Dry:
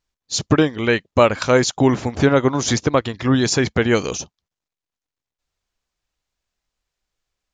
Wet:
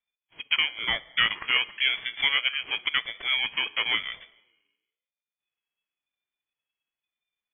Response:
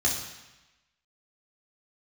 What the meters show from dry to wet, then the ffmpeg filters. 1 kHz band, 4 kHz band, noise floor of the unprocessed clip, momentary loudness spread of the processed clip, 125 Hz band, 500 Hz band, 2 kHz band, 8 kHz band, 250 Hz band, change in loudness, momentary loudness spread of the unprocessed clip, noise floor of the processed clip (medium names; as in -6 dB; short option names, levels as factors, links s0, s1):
-13.0 dB, +3.5 dB, under -85 dBFS, 5 LU, under -30 dB, -29.5 dB, -0.5 dB, under -40 dB, -33.0 dB, -7.0 dB, 8 LU, under -85 dBFS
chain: -filter_complex "[0:a]lowpass=f=2600:t=q:w=0.5098,lowpass=f=2600:t=q:w=0.6013,lowpass=f=2600:t=q:w=0.9,lowpass=f=2600:t=q:w=2.563,afreqshift=-3000,asplit=2[s0][s1];[1:a]atrim=start_sample=2205,lowshelf=f=200:g=11[s2];[s1][s2]afir=irnorm=-1:irlink=0,volume=0.0562[s3];[s0][s3]amix=inputs=2:normalize=0,aeval=exprs='val(0)*sin(2*PI*460*n/s+460*0.25/0.96*sin(2*PI*0.96*n/s))':c=same,volume=0.422"